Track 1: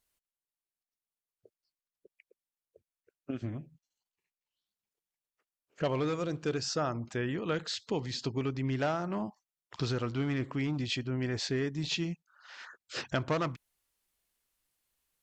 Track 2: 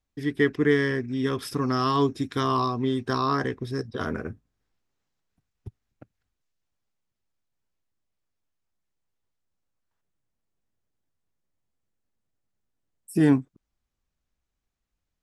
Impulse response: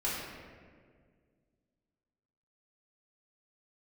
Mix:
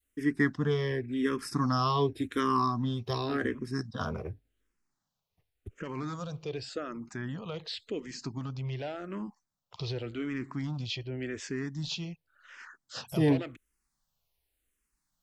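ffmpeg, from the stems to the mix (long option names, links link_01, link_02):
-filter_complex "[0:a]alimiter=limit=-24dB:level=0:latency=1:release=34,volume=0.5dB[link_01];[1:a]adynamicequalizer=threshold=0.0112:dfrequency=2300:dqfactor=0.7:tfrequency=2300:tqfactor=0.7:attack=5:release=100:ratio=0.375:range=3:mode=cutabove:tftype=highshelf,volume=0.5dB[link_02];[link_01][link_02]amix=inputs=2:normalize=0,adynamicequalizer=threshold=0.0141:dfrequency=530:dqfactor=0.79:tfrequency=530:tqfactor=0.79:attack=5:release=100:ratio=0.375:range=2:mode=cutabove:tftype=bell,asplit=2[link_03][link_04];[link_04]afreqshift=-0.89[link_05];[link_03][link_05]amix=inputs=2:normalize=1"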